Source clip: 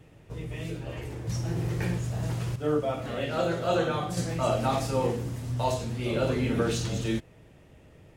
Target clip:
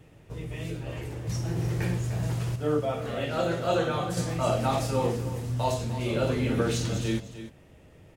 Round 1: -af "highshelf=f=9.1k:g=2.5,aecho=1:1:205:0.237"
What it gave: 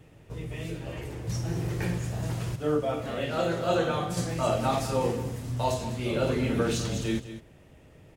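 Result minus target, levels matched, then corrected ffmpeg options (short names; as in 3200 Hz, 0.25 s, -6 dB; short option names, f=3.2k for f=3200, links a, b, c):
echo 95 ms early
-af "highshelf=f=9.1k:g=2.5,aecho=1:1:300:0.237"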